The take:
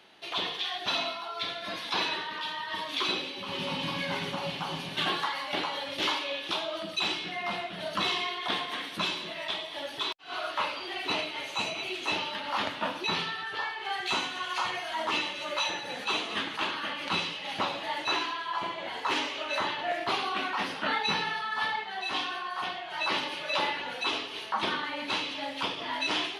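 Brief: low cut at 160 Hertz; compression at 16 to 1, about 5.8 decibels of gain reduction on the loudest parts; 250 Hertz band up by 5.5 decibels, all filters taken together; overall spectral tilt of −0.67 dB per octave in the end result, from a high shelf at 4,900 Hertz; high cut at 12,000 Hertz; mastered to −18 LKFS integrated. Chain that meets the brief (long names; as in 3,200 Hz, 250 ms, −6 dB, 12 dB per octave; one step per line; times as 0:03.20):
high-pass filter 160 Hz
low-pass filter 12,000 Hz
parametric band 250 Hz +8 dB
high-shelf EQ 4,900 Hz −3.5 dB
downward compressor 16 to 1, threshold −30 dBFS
level +16.5 dB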